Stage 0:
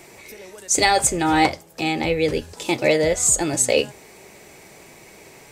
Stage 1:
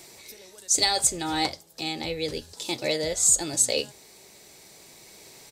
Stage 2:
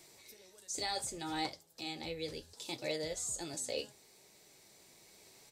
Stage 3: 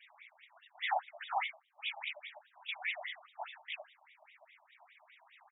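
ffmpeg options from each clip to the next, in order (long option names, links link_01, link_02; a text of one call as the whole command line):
ffmpeg -i in.wav -af "firequalizer=gain_entry='entry(2500,0);entry(3900,12);entry(6400,8)':delay=0.05:min_phase=1,dynaudnorm=framelen=480:gausssize=5:maxgain=11.5dB,volume=-6.5dB" out.wav
ffmpeg -i in.wav -filter_complex "[0:a]acrossover=split=1900[link_01][link_02];[link_02]alimiter=limit=-19dB:level=0:latency=1:release=23[link_03];[link_01][link_03]amix=inputs=2:normalize=0,flanger=delay=6.3:depth=5.7:regen=-58:speed=0.69:shape=sinusoidal,volume=-7dB" out.wav
ffmpeg -i in.wav -filter_complex "[0:a]afftfilt=real='hypot(re,im)*cos(2*PI*random(0))':imag='hypot(re,im)*sin(2*PI*random(1))':win_size=512:overlap=0.75,asplit=2[link_01][link_02];[link_02]adelay=1399,volume=-21dB,highshelf=frequency=4000:gain=-31.5[link_03];[link_01][link_03]amix=inputs=2:normalize=0,afftfilt=real='re*between(b*sr/1024,810*pow(2700/810,0.5+0.5*sin(2*PI*4.9*pts/sr))/1.41,810*pow(2700/810,0.5+0.5*sin(2*PI*4.9*pts/sr))*1.41)':imag='im*between(b*sr/1024,810*pow(2700/810,0.5+0.5*sin(2*PI*4.9*pts/sr))/1.41,810*pow(2700/810,0.5+0.5*sin(2*PI*4.9*pts/sr))*1.41)':win_size=1024:overlap=0.75,volume=15.5dB" out.wav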